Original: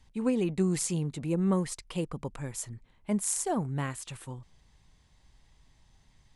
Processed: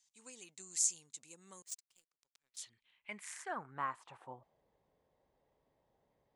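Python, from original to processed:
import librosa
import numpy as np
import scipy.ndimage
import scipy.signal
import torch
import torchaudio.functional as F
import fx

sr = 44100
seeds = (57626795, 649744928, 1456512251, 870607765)

y = fx.filter_sweep_bandpass(x, sr, from_hz=6800.0, to_hz=520.0, start_s=2.01, end_s=4.64, q=3.4)
y = fx.power_curve(y, sr, exponent=2.0, at=(1.62, 2.57))
y = y * 10.0 ** (5.0 / 20.0)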